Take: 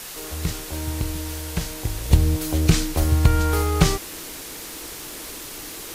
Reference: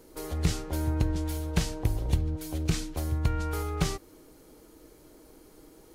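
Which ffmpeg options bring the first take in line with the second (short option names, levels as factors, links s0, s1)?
-filter_complex "[0:a]asplit=3[s0][s1][s2];[s0]afade=t=out:st=2.98:d=0.02[s3];[s1]highpass=f=140:w=0.5412,highpass=f=140:w=1.3066,afade=t=in:st=2.98:d=0.02,afade=t=out:st=3.1:d=0.02[s4];[s2]afade=t=in:st=3.1:d=0.02[s5];[s3][s4][s5]amix=inputs=3:normalize=0,afwtdn=0.018,asetnsamples=n=441:p=0,asendcmd='2.11 volume volume -10.5dB',volume=1"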